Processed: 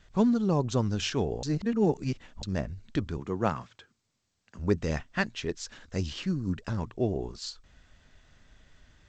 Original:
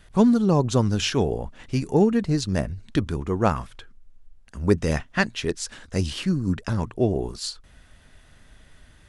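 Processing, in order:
0:01.43–0:02.43: reverse
0:03.18–0:04.59: high-pass filter 98 Hz 24 dB per octave
level −6.5 dB
G.722 64 kbit/s 16,000 Hz

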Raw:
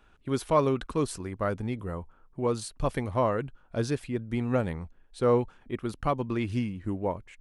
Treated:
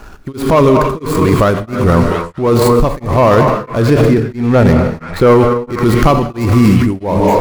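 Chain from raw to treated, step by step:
running median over 15 samples
high-shelf EQ 6,400 Hz +8 dB, from 0:03.82 +2 dB, from 0:05.27 +10.5 dB
leveller curve on the samples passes 1
echo through a band-pass that steps 232 ms, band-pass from 980 Hz, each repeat 0.7 octaves, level −8.5 dB
reverb whose tail is shaped and stops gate 340 ms flat, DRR 7.5 dB
boost into a limiter +29 dB
tremolo along a rectified sine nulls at 1.5 Hz

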